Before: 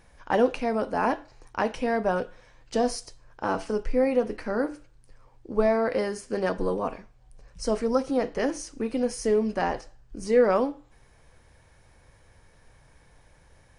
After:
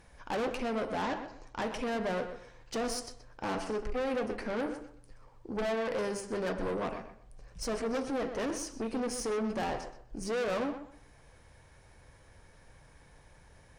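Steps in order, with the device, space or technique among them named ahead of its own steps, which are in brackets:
rockabilly slapback (tube saturation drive 30 dB, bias 0.3; tape delay 126 ms, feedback 27%, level −7.5 dB, low-pass 2,400 Hz)
0:01.02–0:01.62: Butterworth low-pass 7,900 Hz

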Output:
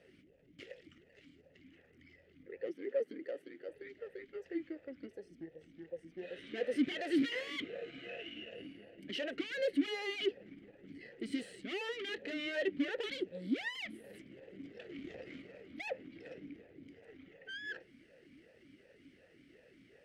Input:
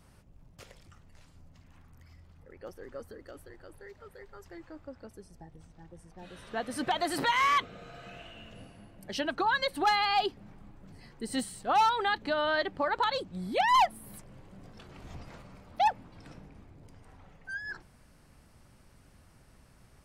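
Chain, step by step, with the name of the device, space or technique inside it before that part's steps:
talk box (tube saturation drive 39 dB, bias 0.65; formant filter swept between two vowels e-i 2.7 Hz)
0:02.66–0:03.69: high-pass filter 160 Hz 24 dB per octave
level +16.5 dB

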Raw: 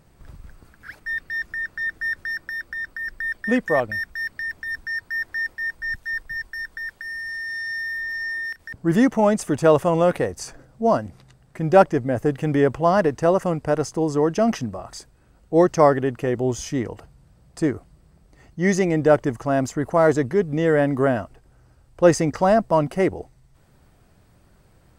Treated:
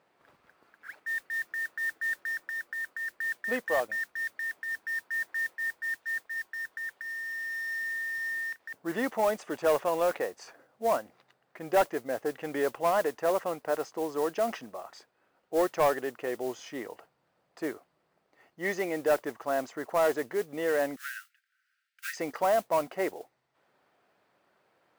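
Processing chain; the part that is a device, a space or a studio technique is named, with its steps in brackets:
carbon microphone (band-pass filter 480–3,400 Hz; soft clipping −12 dBFS, distortion −15 dB; noise that follows the level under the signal 19 dB)
0:20.96–0:22.17: Butterworth high-pass 1,400 Hz 96 dB per octave
level −5 dB

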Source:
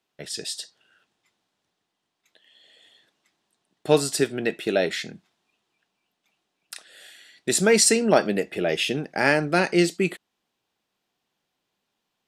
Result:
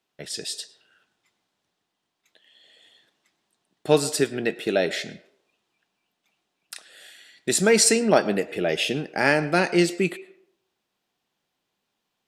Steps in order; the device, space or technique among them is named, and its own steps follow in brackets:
filtered reverb send (on a send: high-pass filter 360 Hz 24 dB per octave + low-pass filter 8,100 Hz + convolution reverb RT60 0.65 s, pre-delay 96 ms, DRR 16 dB)

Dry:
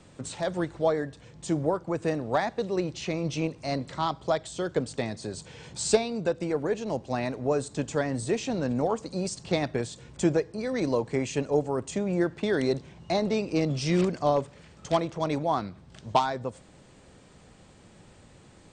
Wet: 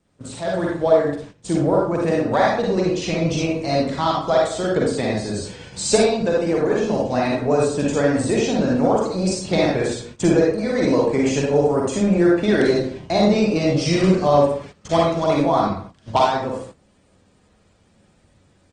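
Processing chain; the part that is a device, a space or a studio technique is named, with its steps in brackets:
speakerphone in a meeting room (convolution reverb RT60 0.50 s, pre-delay 42 ms, DRR −2.5 dB; far-end echo of a speakerphone 210 ms, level −25 dB; automatic gain control gain up to 5 dB; noise gate −36 dBFS, range −14 dB; Opus 20 kbit/s 48,000 Hz)

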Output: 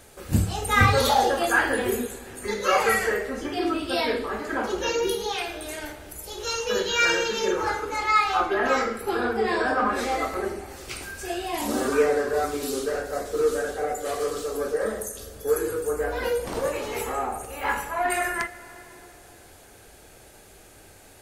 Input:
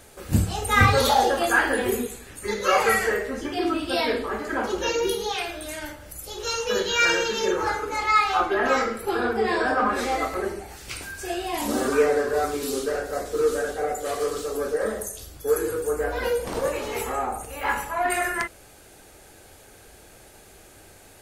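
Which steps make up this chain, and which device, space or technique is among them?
compressed reverb return (on a send at −11.5 dB: convolution reverb RT60 2.9 s, pre-delay 44 ms + downward compressor, threshold −27 dBFS, peak gain reduction 13 dB)
on the sum: level −1 dB

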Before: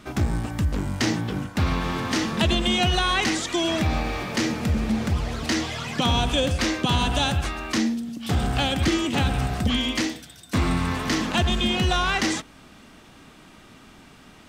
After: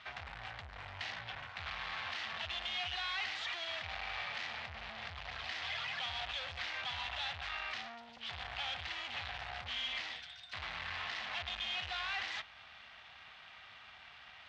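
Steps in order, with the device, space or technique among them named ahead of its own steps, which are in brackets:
scooped metal amplifier (tube saturation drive 37 dB, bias 0.7; loudspeaker in its box 110–3,800 Hz, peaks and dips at 130 Hz −8 dB, 190 Hz −10 dB, 310 Hz −4 dB, 460 Hz −4 dB, 740 Hz +6 dB, 1,900 Hz +3 dB; guitar amp tone stack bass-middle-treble 10-0-10)
level +6 dB

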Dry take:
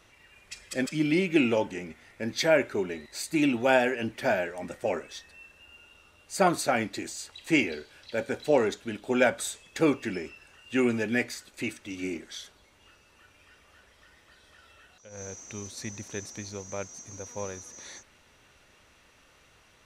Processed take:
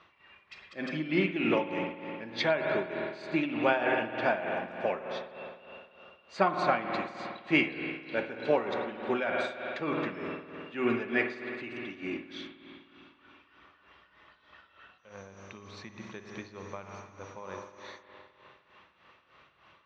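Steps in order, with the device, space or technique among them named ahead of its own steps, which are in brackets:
combo amplifier with spring reverb and tremolo (spring reverb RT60 2.9 s, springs 51 ms, chirp 65 ms, DRR 3.5 dB; amplitude tremolo 3.3 Hz, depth 71%; loudspeaker in its box 100–3,900 Hz, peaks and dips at 110 Hz −6 dB, 260 Hz −5 dB, 480 Hz −4 dB, 1,100 Hz +9 dB)

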